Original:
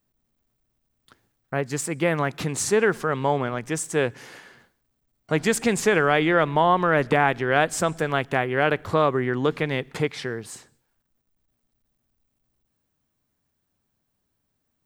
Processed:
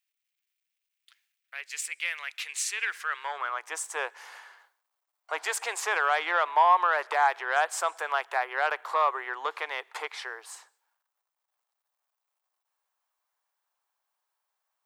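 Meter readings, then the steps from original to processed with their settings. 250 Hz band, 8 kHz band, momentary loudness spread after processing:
below −30 dB, −4.0 dB, 14 LU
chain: harmonic generator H 5 −20 dB, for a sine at −4 dBFS
Butterworth high-pass 350 Hz 36 dB per octave
high-pass filter sweep 2,400 Hz → 920 Hz, 0:02.75–0:03.69
level −8 dB

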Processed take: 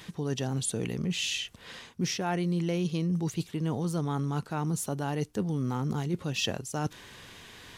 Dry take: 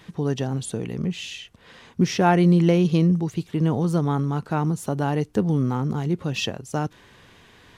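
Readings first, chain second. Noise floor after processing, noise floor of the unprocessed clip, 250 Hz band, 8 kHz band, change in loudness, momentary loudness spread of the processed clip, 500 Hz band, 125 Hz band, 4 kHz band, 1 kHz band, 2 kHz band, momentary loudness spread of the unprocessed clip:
−53 dBFS, −53 dBFS, −9.0 dB, +2.0 dB, −8.5 dB, 9 LU, −9.0 dB, −8.5 dB, −0.5 dB, −9.5 dB, −5.0 dB, 11 LU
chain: high-shelf EQ 2,900 Hz +9 dB
reversed playback
downward compressor 6 to 1, threshold −27 dBFS, peak gain reduction 14.5 dB
reversed playback

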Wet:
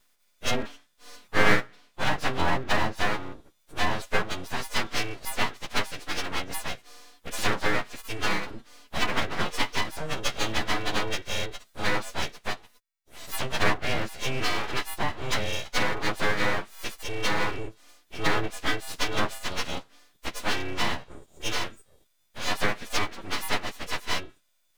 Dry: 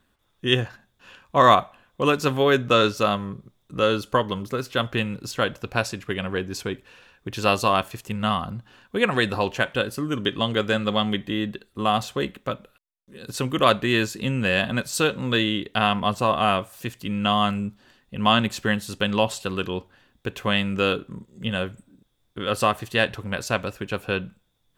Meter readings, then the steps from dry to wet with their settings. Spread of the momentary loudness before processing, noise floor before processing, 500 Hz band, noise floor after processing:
13 LU, −68 dBFS, −9.0 dB, −68 dBFS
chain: every partial snapped to a pitch grid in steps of 3 semitones
treble cut that deepens with the level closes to 1,100 Hz, closed at −13.5 dBFS
full-wave rectification
level −2 dB

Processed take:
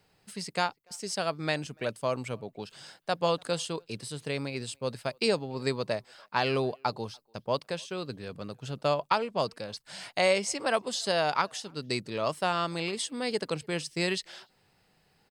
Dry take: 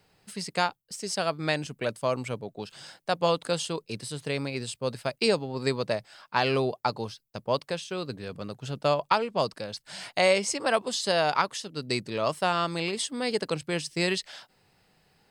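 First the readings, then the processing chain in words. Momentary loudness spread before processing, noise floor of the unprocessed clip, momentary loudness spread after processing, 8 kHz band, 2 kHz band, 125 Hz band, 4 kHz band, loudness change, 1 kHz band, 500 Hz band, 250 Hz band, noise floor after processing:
13 LU, −71 dBFS, 13 LU, −2.5 dB, −2.5 dB, −2.5 dB, −2.5 dB, −2.5 dB, −2.5 dB, −2.5 dB, −2.5 dB, −68 dBFS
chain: far-end echo of a speakerphone 290 ms, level −30 dB
level −2.5 dB

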